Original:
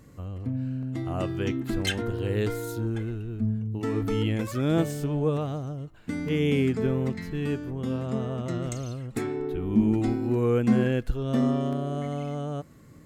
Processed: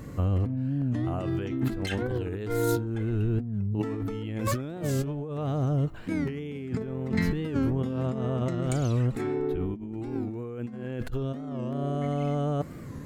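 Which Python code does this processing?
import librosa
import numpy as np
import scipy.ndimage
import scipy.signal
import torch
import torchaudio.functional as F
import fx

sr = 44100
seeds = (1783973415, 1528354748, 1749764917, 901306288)

y = fx.peak_eq(x, sr, hz=8700.0, db=-5.5, octaves=2.9)
y = fx.over_compress(y, sr, threshold_db=-35.0, ratio=-1.0)
y = fx.record_warp(y, sr, rpm=45.0, depth_cents=160.0)
y = F.gain(torch.from_numpy(y), 5.0).numpy()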